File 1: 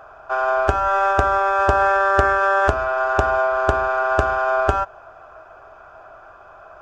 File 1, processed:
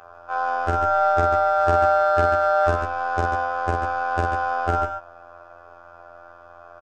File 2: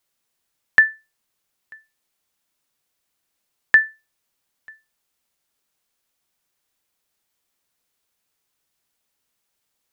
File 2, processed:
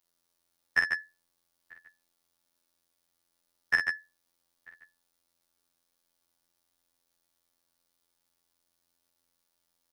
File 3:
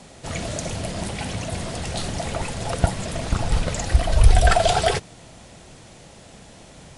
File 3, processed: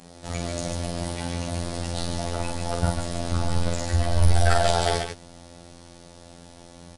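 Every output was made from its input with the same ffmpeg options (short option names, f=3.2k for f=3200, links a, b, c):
-af "asoftclip=type=tanh:threshold=-6.5dB,afftfilt=real='hypot(re,im)*cos(PI*b)':imag='0':win_size=2048:overlap=0.75,aecho=1:1:46.65|142.9:0.631|0.501,volume=-1dB"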